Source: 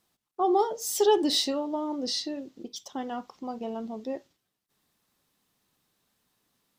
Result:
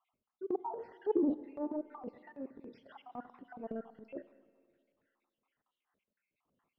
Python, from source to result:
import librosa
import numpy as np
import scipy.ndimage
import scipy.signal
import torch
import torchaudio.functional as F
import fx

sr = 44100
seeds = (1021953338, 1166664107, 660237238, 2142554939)

y = fx.spec_dropout(x, sr, seeds[0], share_pct=62)
y = fx.env_lowpass_down(y, sr, base_hz=540.0, full_db=-29.0)
y = scipy.signal.sosfilt(scipy.signal.butter(4, 2000.0, 'lowpass', fs=sr, output='sos'), y)
y = fx.low_shelf(y, sr, hz=280.0, db=-5.5)
y = fx.transient(y, sr, attack_db=-11, sustain_db=7)
y = fx.rev_schroeder(y, sr, rt60_s=2.1, comb_ms=33, drr_db=16.0)
y = y * 10.0 ** (1.0 / 20.0)